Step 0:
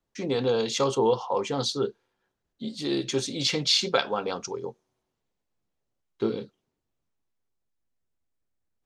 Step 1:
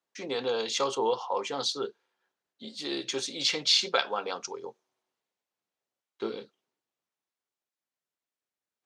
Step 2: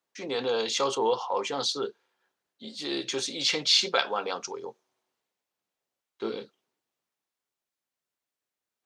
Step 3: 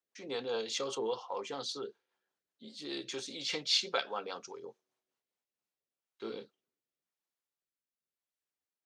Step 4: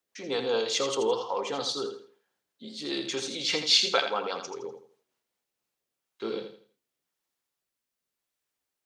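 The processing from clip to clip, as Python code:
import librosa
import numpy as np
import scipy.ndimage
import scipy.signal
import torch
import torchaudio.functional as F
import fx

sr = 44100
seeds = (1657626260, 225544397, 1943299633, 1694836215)

y1 = fx.weighting(x, sr, curve='A')
y1 = y1 * librosa.db_to_amplitude(-1.5)
y2 = fx.transient(y1, sr, attack_db=-3, sustain_db=1)
y2 = y2 * librosa.db_to_amplitude(2.5)
y3 = fx.rotary_switch(y2, sr, hz=5.0, then_hz=0.9, switch_at_s=5.15)
y3 = y3 * librosa.db_to_amplitude(-6.5)
y4 = fx.echo_feedback(y3, sr, ms=82, feedback_pct=31, wet_db=-8)
y4 = y4 * librosa.db_to_amplitude(7.5)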